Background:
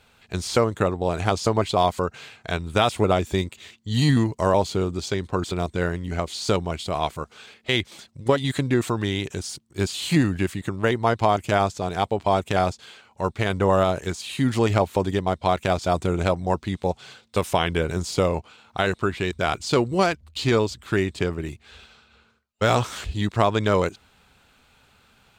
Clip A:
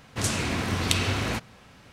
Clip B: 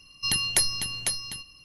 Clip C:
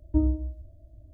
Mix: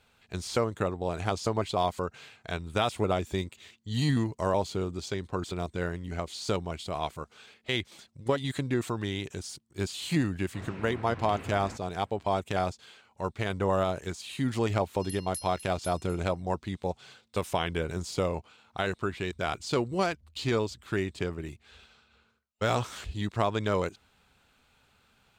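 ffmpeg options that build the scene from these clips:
-filter_complex "[0:a]volume=-7.5dB[a];[1:a]lowpass=1.9k[b];[2:a]aderivative[c];[b]atrim=end=1.92,asetpts=PTS-STARTPTS,volume=-13.5dB,afade=t=in:d=0.004:c=hsin,afade=t=out:st=1.916:d=0.004:c=hsin,adelay=10380[d];[c]atrim=end=1.64,asetpts=PTS-STARTPTS,volume=-17.5dB,afade=t=in:d=0.004:c=hsin,afade=t=out:st=1.636:d=0.004:c=hsin,adelay=14780[e];[a][d][e]amix=inputs=3:normalize=0"

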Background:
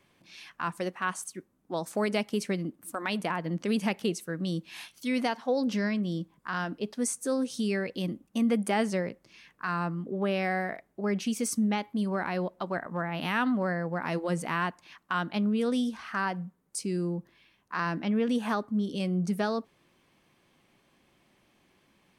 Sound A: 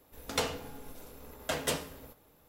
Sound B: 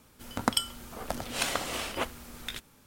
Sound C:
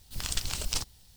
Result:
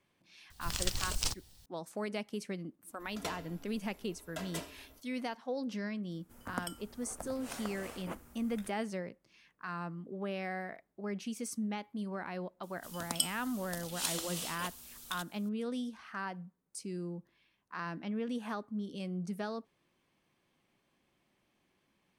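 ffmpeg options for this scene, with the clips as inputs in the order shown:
-filter_complex "[2:a]asplit=2[a][b];[0:a]volume=-9.5dB[c];[1:a]aecho=1:1:3:0.57[d];[a]equalizer=f=3.7k:t=o:w=1.5:g=-11[e];[b]aexciter=amount=4.5:drive=4.5:freq=2.9k[f];[3:a]atrim=end=1.16,asetpts=PTS-STARTPTS,volume=-2.5dB,afade=t=in:d=0.004:c=hsin,afade=t=out:st=1.156:d=0.004:c=hsin,adelay=500[g];[d]atrim=end=2.48,asetpts=PTS-STARTPTS,volume=-11dB,afade=t=in:d=0.004:c=hsin,afade=t=out:st=2.476:d=0.004:c=hsin,adelay=2870[h];[e]atrim=end=2.86,asetpts=PTS-STARTPTS,volume=-10.5dB,afade=t=in:d=0.004:c=hsin,afade=t=out:st=2.856:d=0.004:c=hsin,adelay=269010S[i];[f]atrim=end=2.86,asetpts=PTS-STARTPTS,volume=-15.5dB,afade=t=in:d=0.004:c=hsin,afade=t=out:st=2.856:d=0.004:c=hsin,adelay=12630[j];[c][g][h][i][j]amix=inputs=5:normalize=0"

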